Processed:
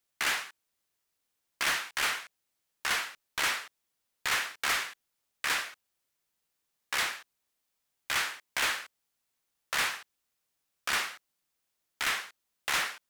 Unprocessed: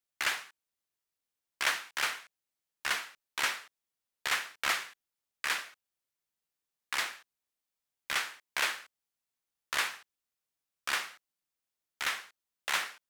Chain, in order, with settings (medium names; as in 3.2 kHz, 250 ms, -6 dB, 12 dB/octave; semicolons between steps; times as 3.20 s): saturation -31.5 dBFS, distortion -7 dB; trim +7.5 dB